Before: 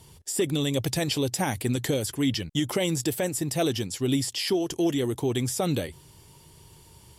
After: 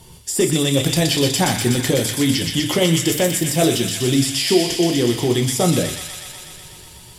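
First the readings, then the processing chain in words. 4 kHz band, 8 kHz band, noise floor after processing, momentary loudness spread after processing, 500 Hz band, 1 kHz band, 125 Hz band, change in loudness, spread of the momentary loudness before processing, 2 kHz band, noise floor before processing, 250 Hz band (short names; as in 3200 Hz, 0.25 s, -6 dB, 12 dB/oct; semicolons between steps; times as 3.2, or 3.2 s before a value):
+11.0 dB, +11.0 dB, -42 dBFS, 10 LU, +8.5 dB, +8.5 dB, +8.5 dB, +9.0 dB, 3 LU, +10.0 dB, -53 dBFS, +8.0 dB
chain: thin delay 0.123 s, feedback 78%, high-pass 1800 Hz, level -3 dB; shoebox room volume 200 m³, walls furnished, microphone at 0.93 m; gain +6.5 dB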